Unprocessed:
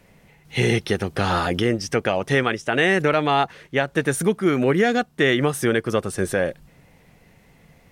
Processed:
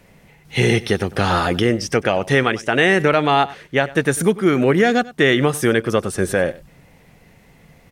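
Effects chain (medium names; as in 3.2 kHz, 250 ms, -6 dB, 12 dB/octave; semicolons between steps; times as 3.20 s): delay 97 ms -19.5 dB; trim +3.5 dB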